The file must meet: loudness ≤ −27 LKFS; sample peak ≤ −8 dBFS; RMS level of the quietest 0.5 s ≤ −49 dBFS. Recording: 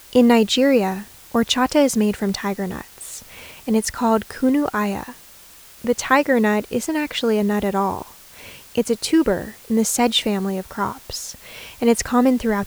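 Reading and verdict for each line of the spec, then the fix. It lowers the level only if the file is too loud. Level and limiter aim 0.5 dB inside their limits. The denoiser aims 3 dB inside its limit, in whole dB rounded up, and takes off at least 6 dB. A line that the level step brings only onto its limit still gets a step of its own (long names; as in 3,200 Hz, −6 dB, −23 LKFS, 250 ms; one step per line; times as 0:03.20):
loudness −20.0 LKFS: out of spec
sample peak −2.0 dBFS: out of spec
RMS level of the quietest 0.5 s −45 dBFS: out of spec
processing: level −7.5 dB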